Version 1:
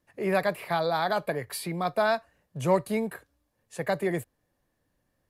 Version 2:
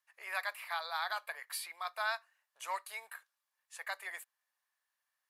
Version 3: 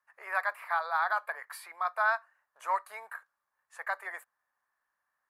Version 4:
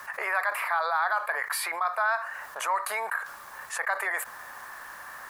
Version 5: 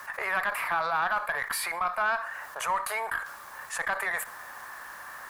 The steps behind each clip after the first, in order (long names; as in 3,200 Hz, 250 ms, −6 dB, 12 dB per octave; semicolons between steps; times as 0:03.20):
high-pass filter 1,000 Hz 24 dB per octave; level −4.5 dB
high shelf with overshoot 2,100 Hz −12.5 dB, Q 1.5; level +6.5 dB
envelope flattener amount 70%
one-sided soft clipper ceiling −17.5 dBFS; on a send at −20 dB: convolution reverb RT60 0.50 s, pre-delay 46 ms